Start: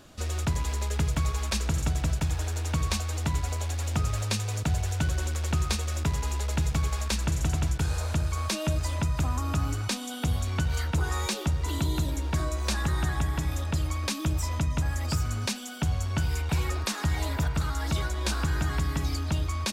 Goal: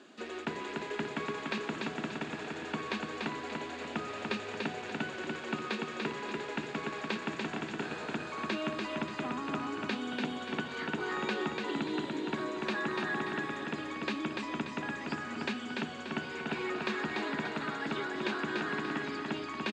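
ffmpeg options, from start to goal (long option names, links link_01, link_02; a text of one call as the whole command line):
ffmpeg -i in.wav -filter_complex "[0:a]acrossover=split=3900[link_01][link_02];[link_02]acompressor=threshold=-52dB:ratio=4:attack=1:release=60[link_03];[link_01][link_03]amix=inputs=2:normalize=0,highpass=frequency=220:width=0.5412,highpass=frequency=220:width=1.3066,equalizer=frequency=230:width_type=q:width=4:gain=6,equalizer=frequency=390:width_type=q:width=4:gain=8,equalizer=frequency=570:width_type=q:width=4:gain=-3,equalizer=frequency=1700:width_type=q:width=4:gain=5,equalizer=frequency=2600:width_type=q:width=4:gain=3,equalizer=frequency=5600:width_type=q:width=4:gain=-8,lowpass=frequency=7000:width=0.5412,lowpass=frequency=7000:width=1.3066,aecho=1:1:291|582|873|1164|1455:0.668|0.287|0.124|0.0531|0.0228,volume=-3.5dB" out.wav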